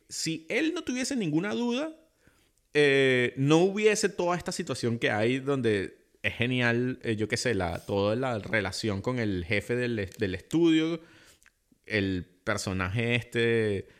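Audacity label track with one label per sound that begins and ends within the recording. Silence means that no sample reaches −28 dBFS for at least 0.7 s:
2.750000	10.950000	sound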